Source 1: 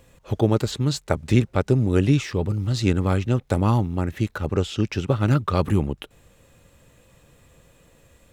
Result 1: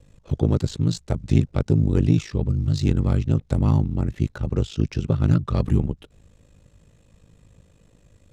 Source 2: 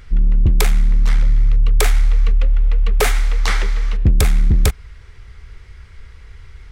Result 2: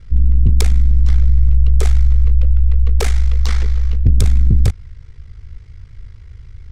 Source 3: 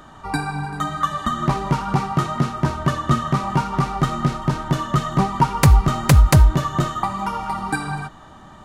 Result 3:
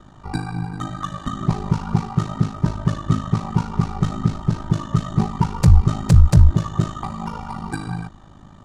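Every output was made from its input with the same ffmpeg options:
ffmpeg -i in.wav -af "asoftclip=type=tanh:threshold=-6dB,adynamicsmooth=sensitivity=0.5:basefreq=5100,lowshelf=frequency=370:gain=10,aeval=exprs='val(0)*sin(2*PI*26*n/s)':channel_layout=same,bass=frequency=250:gain=2,treble=frequency=4000:gain=14,volume=-5.5dB" out.wav

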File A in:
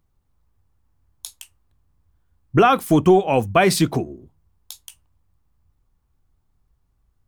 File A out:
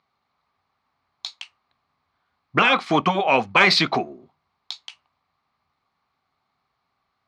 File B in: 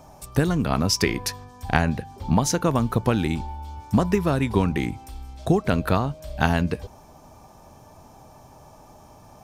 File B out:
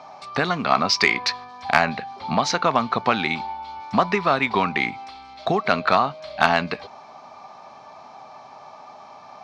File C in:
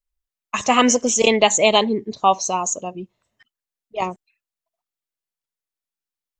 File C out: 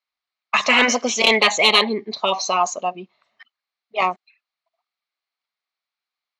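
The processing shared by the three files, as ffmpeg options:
ffmpeg -i in.wav -af "highpass=320,equalizer=frequency=320:width_type=q:width=4:gain=-9,equalizer=frequency=480:width_type=q:width=4:gain=-6,equalizer=frequency=740:width_type=q:width=4:gain=5,equalizer=frequency=1200:width_type=q:width=4:gain=8,equalizer=frequency=2200:width_type=q:width=4:gain=8,equalizer=frequency=4200:width_type=q:width=4:gain=8,lowpass=frequency=4900:width=0.5412,lowpass=frequency=4900:width=1.3066,afftfilt=real='re*lt(hypot(re,im),0.891)':imag='im*lt(hypot(re,im),0.891)':win_size=1024:overlap=0.75,acontrast=46,volume=-1dB" out.wav

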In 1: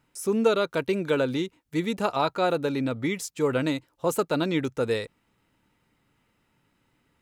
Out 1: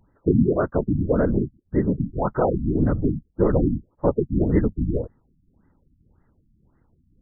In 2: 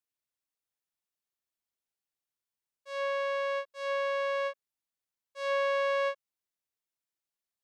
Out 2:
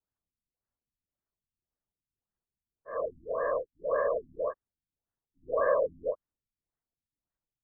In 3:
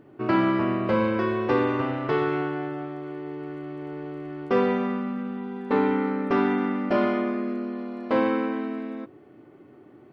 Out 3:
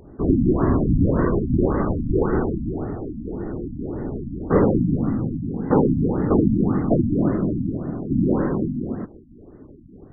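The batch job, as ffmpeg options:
ffmpeg -i in.wav -af "afftfilt=real='hypot(re,im)*cos(2*PI*random(0))':imag='hypot(re,im)*sin(2*PI*random(1))':win_size=512:overlap=0.75,aemphasis=mode=reproduction:type=bsi,afftfilt=real='re*lt(b*sr/1024,290*pow(2100/290,0.5+0.5*sin(2*PI*1.8*pts/sr)))':imag='im*lt(b*sr/1024,290*pow(2100/290,0.5+0.5*sin(2*PI*1.8*pts/sr)))':win_size=1024:overlap=0.75,volume=8dB" out.wav

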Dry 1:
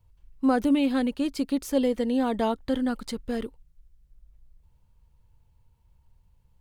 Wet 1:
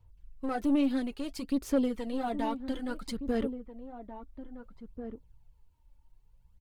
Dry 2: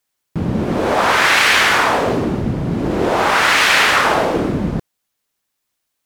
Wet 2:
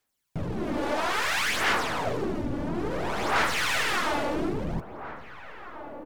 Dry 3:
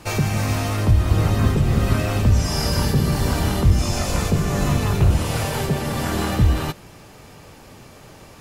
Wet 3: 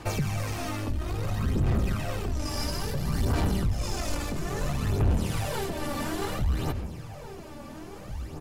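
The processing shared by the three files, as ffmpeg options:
ffmpeg -i in.wav -filter_complex "[0:a]asplit=2[link_01][link_02];[link_02]acompressor=threshold=-23dB:ratio=6,volume=3dB[link_03];[link_01][link_03]amix=inputs=2:normalize=0,flanger=delay=2.3:depth=5.2:regen=-52:speed=1.2:shape=triangular,aeval=exprs='(tanh(7.08*val(0)+0.3)-tanh(0.3))/7.08':channel_layout=same,aphaser=in_gain=1:out_gain=1:delay=3.5:decay=0.53:speed=0.59:type=sinusoidal,asplit=2[link_04][link_05];[link_05]adelay=1691,volume=-10dB,highshelf=frequency=4000:gain=-38[link_06];[link_04][link_06]amix=inputs=2:normalize=0,volume=-8.5dB" out.wav

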